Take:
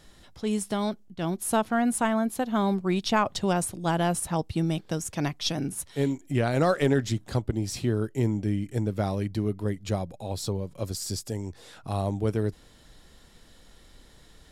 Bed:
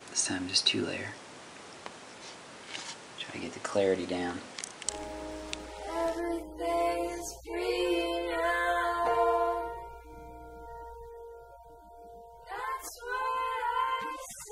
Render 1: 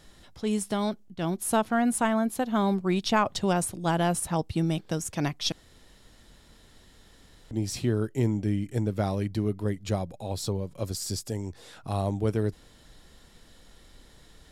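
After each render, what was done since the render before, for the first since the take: 5.52–7.51 room tone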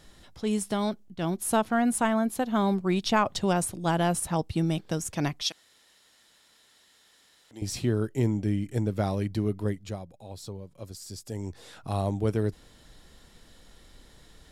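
5.42–7.62 HPF 1400 Hz 6 dB/oct; 9.69–11.44 dip -9.5 dB, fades 0.37 s quadratic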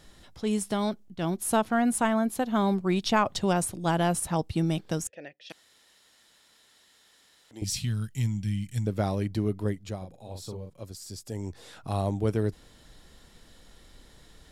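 5.07–5.5 vowel filter e; 7.64–8.87 EQ curve 190 Hz 0 dB, 370 Hz -24 dB, 3100 Hz +4 dB; 9.97–10.7 doubler 43 ms -5 dB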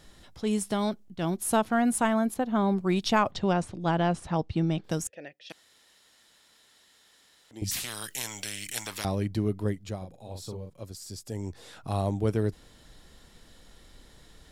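2.34–2.77 high shelf 3000 Hz -10.5 dB; 3.31–4.84 air absorption 130 m; 7.71–9.05 spectral compressor 10:1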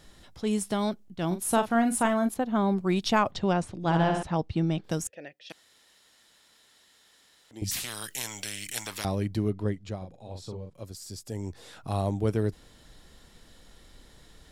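1.27–2.29 doubler 39 ms -9.5 dB; 3.76–4.23 flutter echo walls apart 11.3 m, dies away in 0.83 s; 9.5–10.74 air absorption 57 m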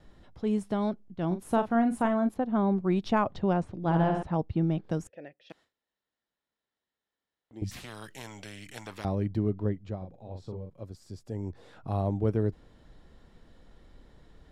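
LPF 1000 Hz 6 dB/oct; gate with hold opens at -58 dBFS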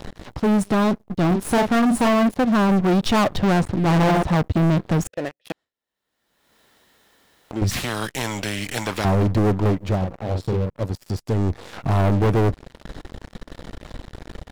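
sample leveller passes 5; upward compressor, threshold -27 dBFS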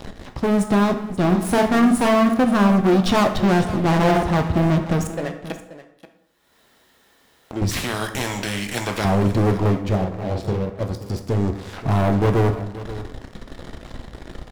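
echo 0.531 s -15 dB; plate-style reverb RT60 0.81 s, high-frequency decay 0.65×, DRR 5.5 dB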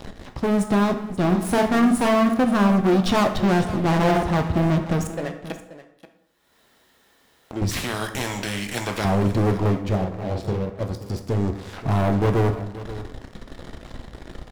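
gain -2 dB

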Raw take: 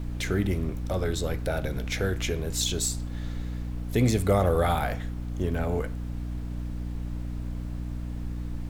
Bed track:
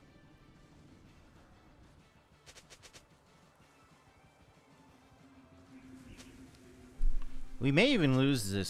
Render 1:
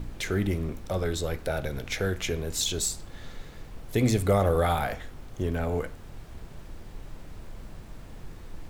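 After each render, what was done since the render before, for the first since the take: de-hum 60 Hz, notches 5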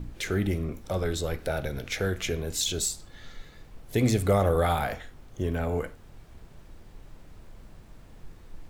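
noise print and reduce 6 dB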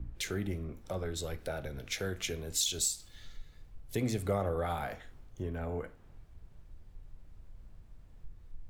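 compressor 2:1, threshold -40 dBFS, peak gain reduction 12 dB; three-band expander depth 70%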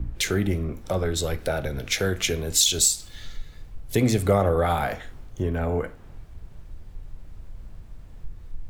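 gain +11.5 dB

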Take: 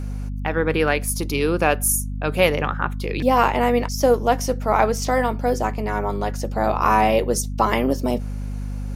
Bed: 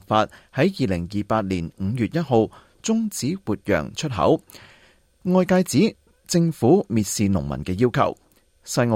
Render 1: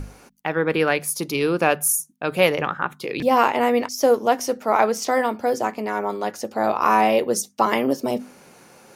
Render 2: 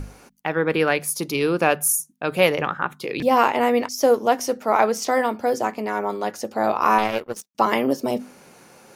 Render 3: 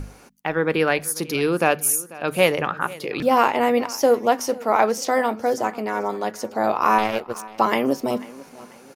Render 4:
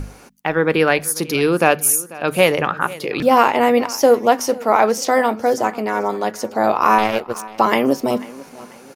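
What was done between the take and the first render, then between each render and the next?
notches 50/100/150/200/250 Hz
6.98–7.55 power-law curve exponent 2
feedback echo 0.492 s, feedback 39%, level -20 dB
gain +4.5 dB; limiter -1 dBFS, peak gain reduction 2.5 dB

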